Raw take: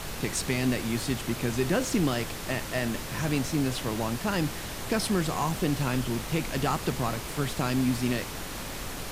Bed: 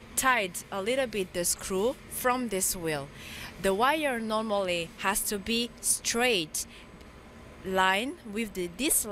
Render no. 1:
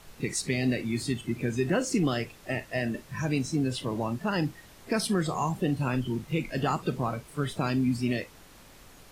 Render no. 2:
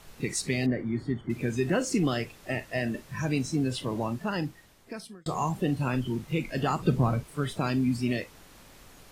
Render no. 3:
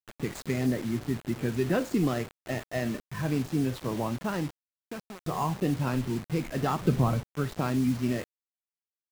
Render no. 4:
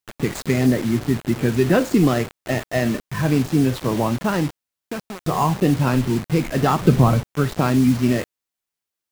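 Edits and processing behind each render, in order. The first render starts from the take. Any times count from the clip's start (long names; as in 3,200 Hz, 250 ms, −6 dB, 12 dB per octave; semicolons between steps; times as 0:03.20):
noise reduction from a noise print 16 dB
0:00.66–0:01.30: Savitzky-Golay smoothing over 41 samples; 0:04.06–0:05.26: fade out; 0:06.79–0:07.24: low-shelf EQ 240 Hz +11 dB
running median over 15 samples; bit reduction 7 bits
level +10 dB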